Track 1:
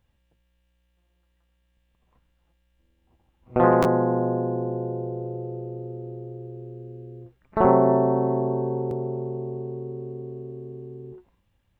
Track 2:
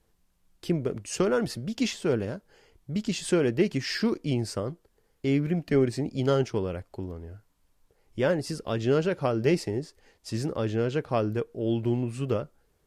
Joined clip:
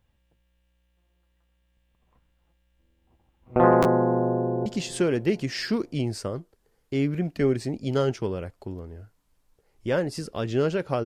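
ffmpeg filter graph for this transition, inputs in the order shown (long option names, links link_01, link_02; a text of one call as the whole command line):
ffmpeg -i cue0.wav -i cue1.wav -filter_complex "[0:a]apad=whole_dur=11.05,atrim=end=11.05,atrim=end=4.662[link_01];[1:a]atrim=start=2.978:end=9.37[link_02];[link_01][link_02]acrossfade=duration=0.004:curve1=hsin:curve2=hsin,asplit=2[link_03][link_04];[link_04]afade=type=in:start_time=4.24:duration=0.01,afade=type=out:start_time=4.66:duration=0.01,aecho=0:1:370|740|1110|1480:0.141254|0.0706269|0.0353134|0.0176567[link_05];[link_03][link_05]amix=inputs=2:normalize=0" out.wav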